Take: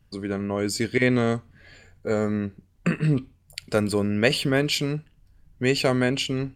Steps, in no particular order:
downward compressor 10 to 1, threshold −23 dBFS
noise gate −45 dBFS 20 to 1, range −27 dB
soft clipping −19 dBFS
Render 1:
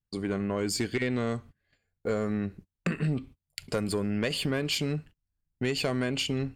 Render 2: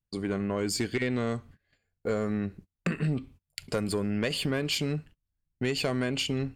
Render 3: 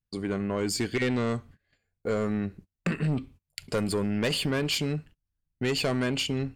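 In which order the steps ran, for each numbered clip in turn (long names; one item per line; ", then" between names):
downward compressor, then noise gate, then soft clipping
noise gate, then downward compressor, then soft clipping
noise gate, then soft clipping, then downward compressor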